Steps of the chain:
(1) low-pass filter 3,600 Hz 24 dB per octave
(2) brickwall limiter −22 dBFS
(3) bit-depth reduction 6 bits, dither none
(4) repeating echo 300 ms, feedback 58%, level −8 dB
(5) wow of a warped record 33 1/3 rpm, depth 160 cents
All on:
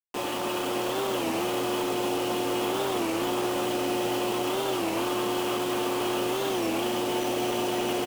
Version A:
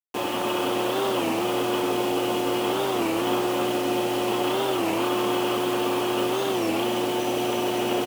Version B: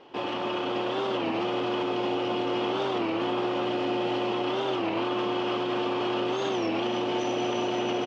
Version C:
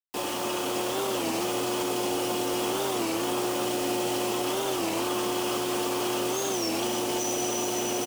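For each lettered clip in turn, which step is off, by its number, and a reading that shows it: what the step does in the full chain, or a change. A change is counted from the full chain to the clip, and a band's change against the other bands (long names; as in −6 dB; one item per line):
2, average gain reduction 3.0 dB
3, distortion level −10 dB
1, 8 kHz band +7.0 dB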